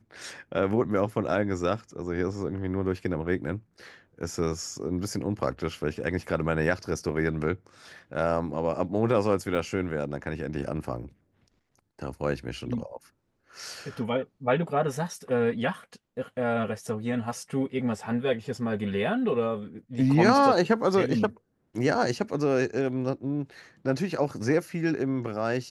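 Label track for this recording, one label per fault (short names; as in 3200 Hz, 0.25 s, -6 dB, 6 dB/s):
9.550000	9.550000	gap 4.1 ms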